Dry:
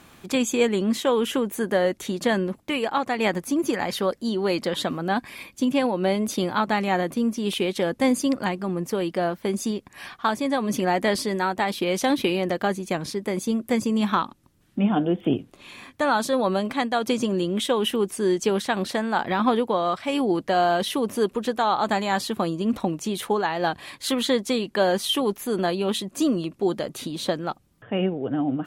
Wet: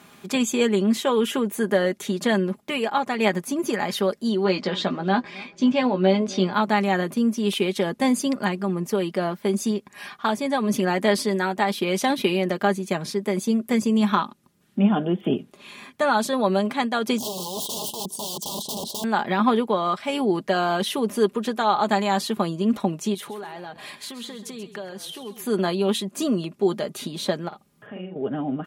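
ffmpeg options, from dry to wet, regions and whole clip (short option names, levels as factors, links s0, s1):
-filter_complex "[0:a]asettb=1/sr,asplit=3[s0][s1][s2];[s0]atrim=end=4.444[s3];[s1]atrim=start=4.44:end=6.54,asetpts=PTS-STARTPTS,afade=t=in:d=0.004:c=qsin,afade=t=out:st=2.096:d=0.004:c=qsin,lowpass=f=5900:w=0.5412,lowpass=f=5900:w=1.3066,asplit=2[s4][s5];[s5]adelay=16,volume=0.447[s6];[s4][s6]amix=inputs=2:normalize=0,atrim=end_sample=92610,asplit=2[s7][s8];[s8]adelay=268,lowpass=f=1900:p=1,volume=0.0794,asplit=2[s9][s10];[s10]adelay=268,lowpass=f=1900:p=1,volume=0.53,asplit=2[s11][s12];[s12]adelay=268,lowpass=f=1900:p=1,volume=0.53,asplit=2[s13][s14];[s14]adelay=268,lowpass=f=1900:p=1,volume=0.53[s15];[s7][s9][s11][s13][s15]amix=inputs=5:normalize=0,atrim=end_sample=92610[s16];[s2]atrim=start=6.536[s17];[s3][s16]acrossfade=d=0.004:c1=hsin:c2=qsin[s18];[s18][s17]acrossfade=d=0.004:c1=qsin:c2=hsin,asettb=1/sr,asplit=3[s19][s20][s21];[s19]atrim=end=17.184[s22];[s20]atrim=start=17.18:end=19.04,asetpts=PTS-STARTPTS,afade=t=in:d=0.004:c=qsin,afade=t=out:st=1.856:d=0.004:c=qsin,aeval=exprs='(mod(16.8*val(0)+1,2)-1)/16.8':c=same,asuperstop=centerf=1800:order=12:qfactor=0.87[s23];[s21]atrim=start=19.036[s24];[s22][s23]acrossfade=d=0.004:c1=hsin:c2=qsin[s25];[s25][s24]acrossfade=d=0.004:c1=qsin:c2=hsin,asettb=1/sr,asplit=3[s26][s27][s28];[s26]atrim=end=23.144[s29];[s27]atrim=start=23.14:end=25.45,asetpts=PTS-STARTPTS,afade=t=in:d=0.004:c=qsin,afade=t=out:st=2.306:d=0.004:c=qsin,acompressor=threshold=0.0224:ratio=12:attack=3.2:release=140:knee=1:detection=peak,asplit=4[s30][s31][s32][s33];[s31]adelay=132,afreqshift=-36,volume=0.251[s34];[s32]adelay=264,afreqshift=-72,volume=0.0851[s35];[s33]adelay=396,afreqshift=-108,volume=0.0292[s36];[s30][s34][s35][s36]amix=inputs=4:normalize=0,atrim=end_sample=101871[s37];[s28]atrim=start=25.446[s38];[s29][s37]acrossfade=d=0.004:c1=hsin:c2=qsin[s39];[s39][s38]acrossfade=d=0.004:c1=qsin:c2=hsin,asettb=1/sr,asplit=3[s40][s41][s42];[s40]atrim=end=27.484[s43];[s41]atrim=start=27.48:end=28.16,asetpts=PTS-STARTPTS,afade=t=in:d=0.004:c=qsin,afade=t=out:st=0.676:d=0.004:c=qsin,acompressor=threshold=0.0126:ratio=5:attack=3.2:release=140:knee=1:detection=peak,asplit=2[s44][s45];[s45]adelay=44,volume=0.794[s46];[s44][s46]amix=inputs=2:normalize=0,atrim=end_sample=29988[s47];[s42]atrim=start=28.156[s48];[s43][s47]acrossfade=d=0.004:c1=hsin:c2=qsin[s49];[s49][s48]acrossfade=d=0.004:c1=qsin:c2=hsin,highpass=110,aecho=1:1:4.9:0.49"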